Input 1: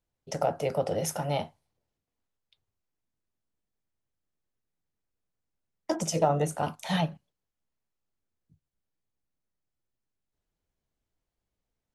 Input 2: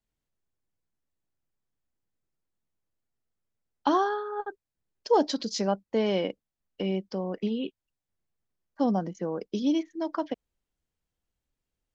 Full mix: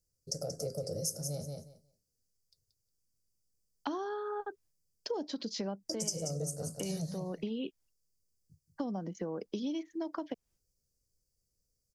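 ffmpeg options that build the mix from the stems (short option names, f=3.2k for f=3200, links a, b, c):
-filter_complex "[0:a]firequalizer=gain_entry='entry(130,0);entry(270,-8);entry(510,-2);entry(890,-30);entry(1300,-19);entry(3100,-29);entry(4700,9);entry(13000,6)':delay=0.05:min_phase=1,volume=2dB,asplit=3[a][b][c];[b]volume=-9dB[d];[1:a]agate=range=-33dB:threshold=-56dB:ratio=3:detection=peak,acrossover=split=420|5200[e][f][g];[e]acompressor=threshold=-29dB:ratio=4[h];[f]acompressor=threshold=-35dB:ratio=4[i];[g]acompressor=threshold=-51dB:ratio=4[j];[h][i][j]amix=inputs=3:normalize=0,volume=2dB[k];[c]apad=whole_len=526727[l];[k][l]sidechaincompress=threshold=-32dB:ratio=8:attack=50:release=818[m];[d]aecho=0:1:180|360|540:1|0.15|0.0225[n];[a][m][n]amix=inputs=3:normalize=0,acompressor=threshold=-36dB:ratio=3"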